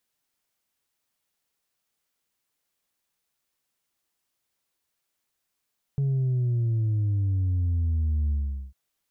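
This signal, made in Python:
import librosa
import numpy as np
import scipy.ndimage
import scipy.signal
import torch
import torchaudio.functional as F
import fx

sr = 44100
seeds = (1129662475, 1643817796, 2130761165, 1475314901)

y = fx.sub_drop(sr, level_db=-22, start_hz=140.0, length_s=2.75, drive_db=2.0, fade_s=0.42, end_hz=65.0)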